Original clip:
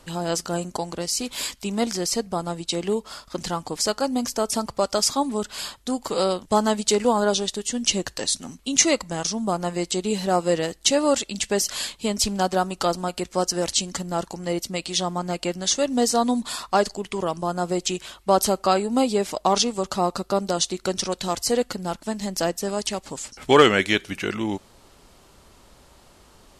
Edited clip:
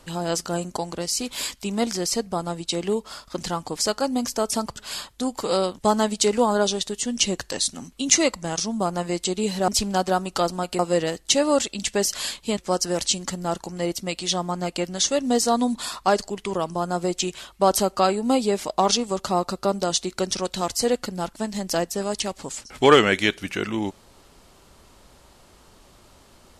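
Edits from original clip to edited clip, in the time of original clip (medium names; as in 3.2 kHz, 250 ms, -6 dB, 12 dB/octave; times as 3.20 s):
4.76–5.43 s: delete
12.13–13.24 s: move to 10.35 s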